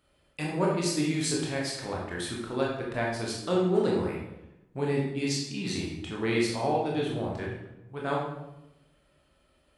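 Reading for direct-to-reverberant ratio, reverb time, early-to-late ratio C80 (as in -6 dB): -3.5 dB, 0.95 s, 5.5 dB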